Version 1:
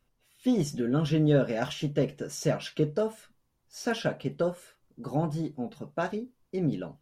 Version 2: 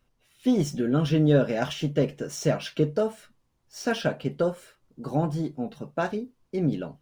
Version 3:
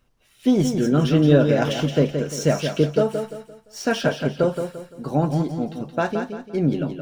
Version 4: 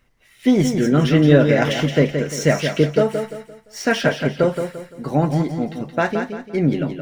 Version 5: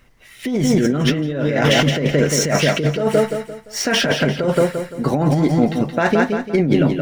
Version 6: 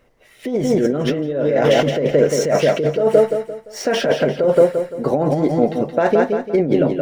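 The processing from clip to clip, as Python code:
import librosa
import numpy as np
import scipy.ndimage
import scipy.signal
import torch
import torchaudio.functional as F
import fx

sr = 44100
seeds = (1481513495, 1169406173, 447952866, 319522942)

y1 = scipy.ndimage.median_filter(x, 3, mode='constant')
y1 = y1 * librosa.db_to_amplitude(3.0)
y2 = fx.echo_feedback(y1, sr, ms=172, feedback_pct=35, wet_db=-7.0)
y2 = y2 * librosa.db_to_amplitude(4.5)
y3 = fx.peak_eq(y2, sr, hz=2000.0, db=13.0, octaves=0.33)
y3 = y3 * librosa.db_to_amplitude(2.5)
y4 = fx.over_compress(y3, sr, threshold_db=-21.0, ratio=-1.0)
y4 = y4 * librosa.db_to_amplitude(5.0)
y5 = fx.peak_eq(y4, sr, hz=520.0, db=13.0, octaves=1.5)
y5 = y5 * librosa.db_to_amplitude(-7.5)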